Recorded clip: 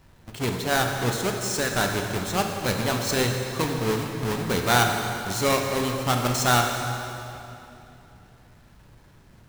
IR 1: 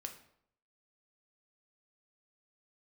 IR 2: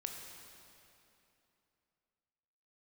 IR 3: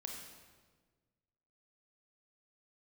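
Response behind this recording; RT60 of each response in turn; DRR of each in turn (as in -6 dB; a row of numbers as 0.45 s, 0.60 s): 2; 0.70 s, 2.9 s, 1.5 s; 4.0 dB, 2.0 dB, 0.5 dB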